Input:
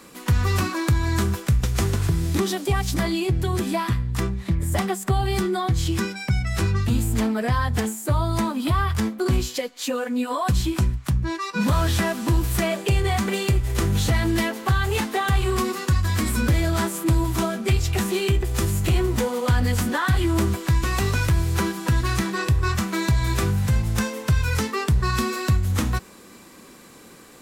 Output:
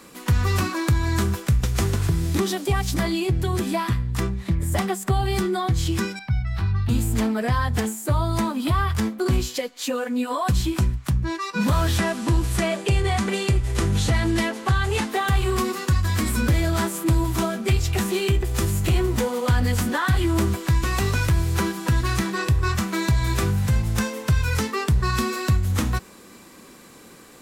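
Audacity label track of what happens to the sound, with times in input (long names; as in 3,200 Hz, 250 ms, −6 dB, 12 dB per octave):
6.190000	6.890000	drawn EQ curve 110 Hz 0 dB, 490 Hz −17 dB, 790 Hz −3 dB, 1,700 Hz −6 dB, 2,600 Hz −9 dB, 4,200 Hz −6 dB, 7,200 Hz −24 dB, 15,000 Hz −15 dB
11.980000	15.090000	low-pass filter 11,000 Hz 24 dB per octave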